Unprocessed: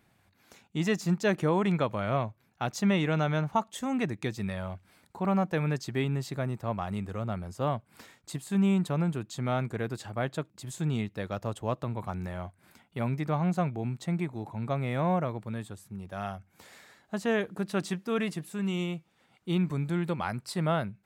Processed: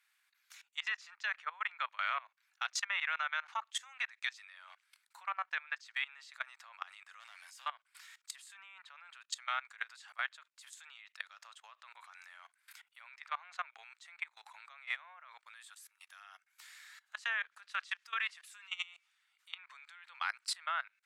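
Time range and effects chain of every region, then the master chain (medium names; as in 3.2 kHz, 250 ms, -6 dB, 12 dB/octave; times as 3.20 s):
7.20–7.66 s: high-pass 850 Hz + peaking EQ 1.3 kHz -12.5 dB 0.22 oct + power-law waveshaper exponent 0.7
15.54–16.21 s: bass shelf 460 Hz -11 dB + three bands compressed up and down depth 40%
whole clip: low-pass that closes with the level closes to 2.2 kHz, closed at -22.5 dBFS; inverse Chebyshev high-pass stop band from 300 Hz, stop band 70 dB; level held to a coarse grid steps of 21 dB; trim +7.5 dB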